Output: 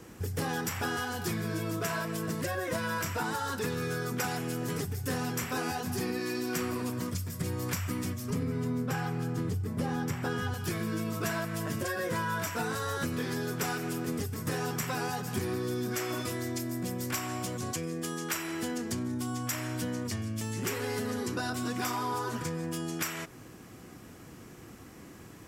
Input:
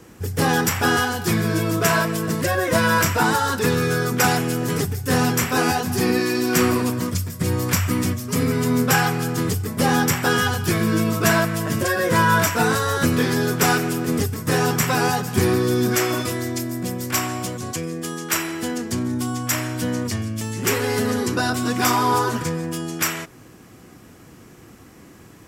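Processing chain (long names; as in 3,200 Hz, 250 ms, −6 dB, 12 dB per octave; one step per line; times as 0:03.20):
0:08.30–0:10.54: spectral tilt −2 dB per octave
downward compressor 4 to 1, threshold −28 dBFS, peak gain reduction 14 dB
level −3.5 dB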